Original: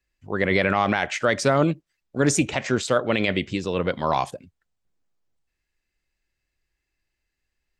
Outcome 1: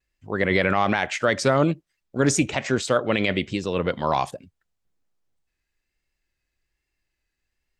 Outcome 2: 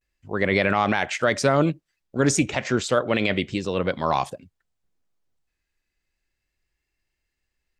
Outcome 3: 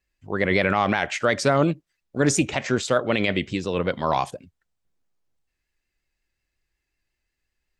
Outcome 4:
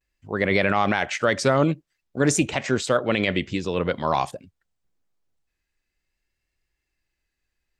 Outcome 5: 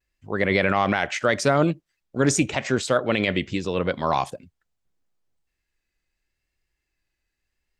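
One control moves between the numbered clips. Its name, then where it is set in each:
pitch vibrato, speed: 1.2, 0.32, 5.5, 0.5, 0.8 Hertz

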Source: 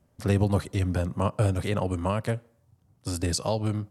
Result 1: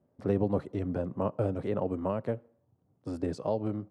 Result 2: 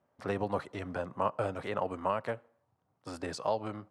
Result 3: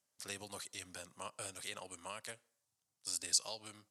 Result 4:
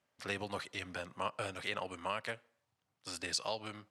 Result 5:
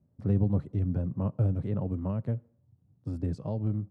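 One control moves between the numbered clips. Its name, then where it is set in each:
resonant band-pass, frequency: 390, 990, 7,200, 2,600, 150 Hertz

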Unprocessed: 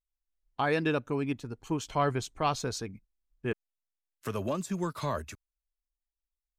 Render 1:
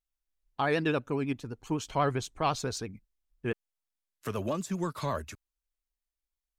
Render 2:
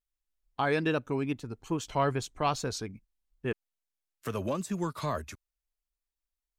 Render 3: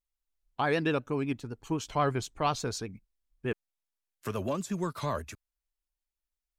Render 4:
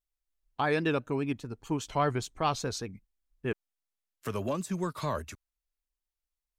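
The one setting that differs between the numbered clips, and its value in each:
pitch vibrato, speed: 12, 2.4, 8.1, 5 Hertz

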